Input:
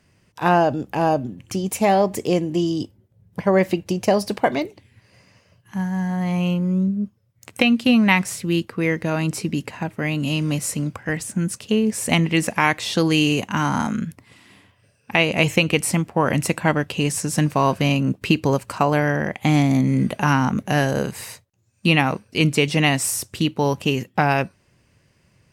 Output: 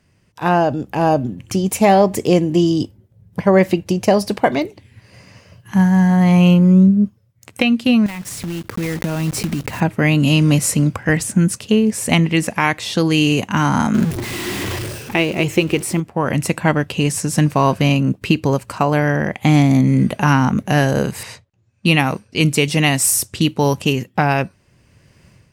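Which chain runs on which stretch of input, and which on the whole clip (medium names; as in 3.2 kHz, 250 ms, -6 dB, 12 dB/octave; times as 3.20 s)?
8.06–9.81 s: block-companded coder 3-bit + bass shelf 220 Hz +6.5 dB + compression 10:1, threshold -28 dBFS
13.94–16.00 s: jump at every zero crossing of -29 dBFS + peaking EQ 360 Hz +14.5 dB 0.27 oct
21.23–23.93 s: treble shelf 6.4 kHz +9.5 dB + level-controlled noise filter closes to 2.8 kHz, open at -16.5 dBFS
whole clip: bass shelf 210 Hz +3.5 dB; level rider; trim -1 dB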